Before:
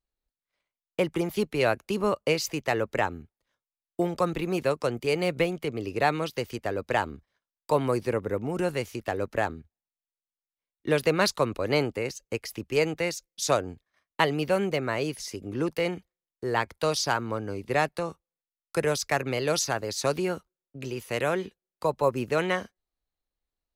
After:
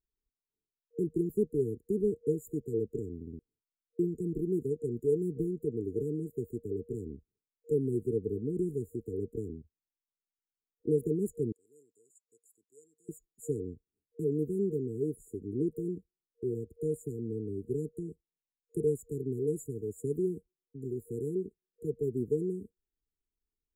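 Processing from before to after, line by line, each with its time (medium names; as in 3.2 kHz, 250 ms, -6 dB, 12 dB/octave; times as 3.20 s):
3.15 s: stutter in place 0.06 s, 4 plays
11.52–13.09 s: band-pass filter 7.3 kHz, Q 2.5
whole clip: peaking EQ 650 Hz +10.5 dB 0.67 oct; FFT band-reject 470–6900 Hz; peaking EQ 9.5 kHz -9.5 dB 2.7 oct; trim -3 dB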